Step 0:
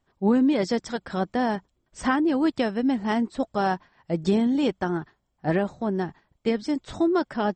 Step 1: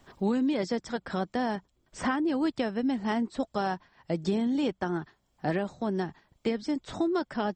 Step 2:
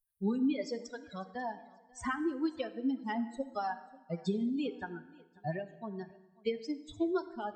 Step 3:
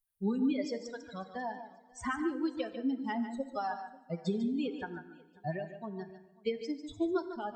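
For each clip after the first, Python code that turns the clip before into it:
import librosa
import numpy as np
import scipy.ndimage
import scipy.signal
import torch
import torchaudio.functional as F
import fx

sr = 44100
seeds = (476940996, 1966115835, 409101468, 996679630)

y1 = fx.peak_eq(x, sr, hz=4900.0, db=2.0, octaves=1.5)
y1 = fx.band_squash(y1, sr, depth_pct=70)
y1 = F.gain(torch.from_numpy(y1), -5.5).numpy()
y2 = fx.bin_expand(y1, sr, power=3.0)
y2 = fx.echo_feedback(y2, sr, ms=540, feedback_pct=34, wet_db=-24)
y2 = fx.rev_plate(y2, sr, seeds[0], rt60_s=1.1, hf_ratio=0.8, predelay_ms=0, drr_db=11.5)
y3 = y2 + 10.0 ** (-10.0 / 20.0) * np.pad(y2, (int(147 * sr / 1000.0), 0))[:len(y2)]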